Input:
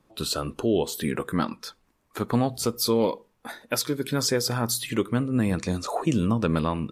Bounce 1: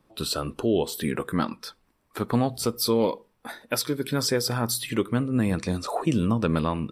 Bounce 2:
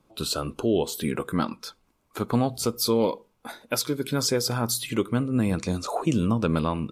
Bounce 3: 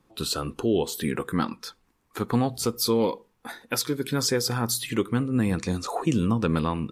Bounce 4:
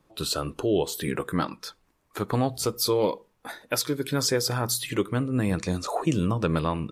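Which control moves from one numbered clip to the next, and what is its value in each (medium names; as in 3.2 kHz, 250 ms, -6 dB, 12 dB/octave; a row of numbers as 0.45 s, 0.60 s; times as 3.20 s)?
band-stop, frequency: 6.7 kHz, 1.8 kHz, 610 Hz, 230 Hz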